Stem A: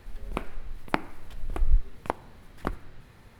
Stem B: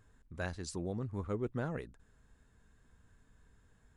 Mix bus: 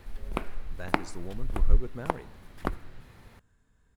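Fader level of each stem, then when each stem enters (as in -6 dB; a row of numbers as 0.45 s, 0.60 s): +0.5 dB, -2.5 dB; 0.00 s, 0.40 s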